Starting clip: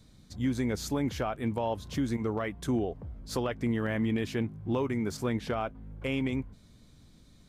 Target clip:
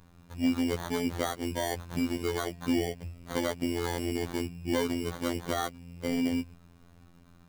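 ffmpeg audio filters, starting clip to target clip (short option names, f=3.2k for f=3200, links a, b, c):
-af "acrusher=samples=17:mix=1:aa=0.000001,afftfilt=real='hypot(re,im)*cos(PI*b)':imag='0':win_size=2048:overlap=0.75,volume=4dB"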